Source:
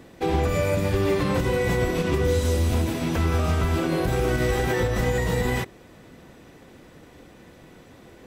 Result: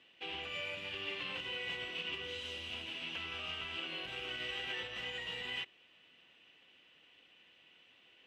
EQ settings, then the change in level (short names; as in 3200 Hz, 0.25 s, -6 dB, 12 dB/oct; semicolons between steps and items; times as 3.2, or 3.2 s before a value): band-pass 2900 Hz, Q 9.3; tilt -2 dB/oct; +8.0 dB